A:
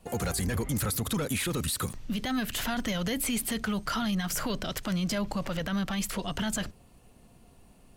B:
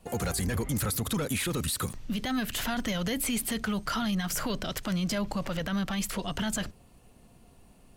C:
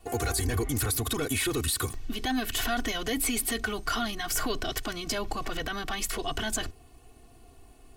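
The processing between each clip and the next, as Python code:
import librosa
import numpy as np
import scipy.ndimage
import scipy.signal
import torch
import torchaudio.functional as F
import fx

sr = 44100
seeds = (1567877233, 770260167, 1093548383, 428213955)

y1 = x
y2 = y1 + 0.92 * np.pad(y1, (int(2.7 * sr / 1000.0), 0))[:len(y1)]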